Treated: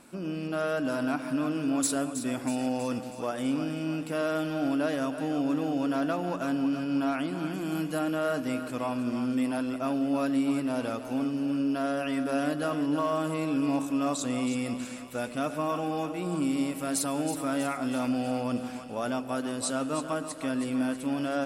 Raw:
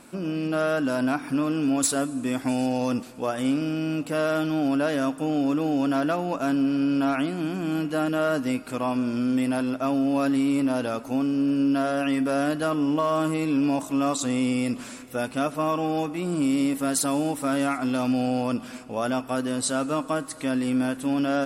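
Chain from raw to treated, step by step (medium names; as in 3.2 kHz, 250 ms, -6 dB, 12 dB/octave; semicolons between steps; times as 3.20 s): 7.53–7.99 s: treble shelf 7.4 kHz +11 dB; two-band feedback delay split 520 Hz, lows 112 ms, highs 321 ms, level -9.5 dB; trim -5 dB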